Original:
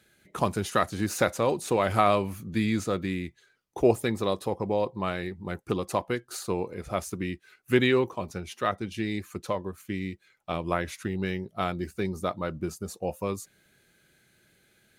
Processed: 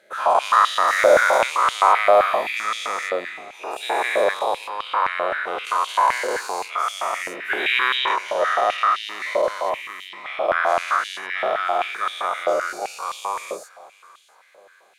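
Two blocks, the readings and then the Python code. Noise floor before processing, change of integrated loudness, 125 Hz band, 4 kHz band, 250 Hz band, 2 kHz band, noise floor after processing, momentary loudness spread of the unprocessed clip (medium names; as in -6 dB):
-67 dBFS, +8.5 dB, under -20 dB, +11.0 dB, -12.0 dB, +13.0 dB, -54 dBFS, 11 LU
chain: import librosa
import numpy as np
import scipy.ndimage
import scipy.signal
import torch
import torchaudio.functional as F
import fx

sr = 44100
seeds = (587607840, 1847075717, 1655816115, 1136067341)

p1 = fx.spec_dilate(x, sr, span_ms=480)
p2 = fx.high_shelf(p1, sr, hz=7400.0, db=-9.5)
p3 = fx.echo_feedback(p2, sr, ms=679, feedback_pct=38, wet_db=-21)
p4 = 10.0 ** (-14.0 / 20.0) * np.tanh(p3 / 10.0 ** (-14.0 / 20.0))
p5 = p3 + (p4 * librosa.db_to_amplitude(-11.5))
p6 = fx.filter_held_highpass(p5, sr, hz=7.7, low_hz=580.0, high_hz=3200.0)
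y = p6 * librosa.db_to_amplitude(-4.0)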